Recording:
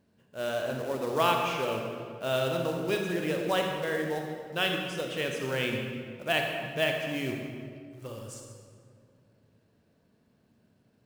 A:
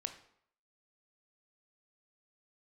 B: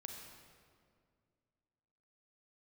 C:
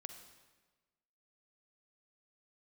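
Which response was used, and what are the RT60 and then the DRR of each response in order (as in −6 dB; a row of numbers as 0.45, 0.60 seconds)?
B; 0.65, 2.1, 1.3 seconds; 7.5, 2.0, 6.5 decibels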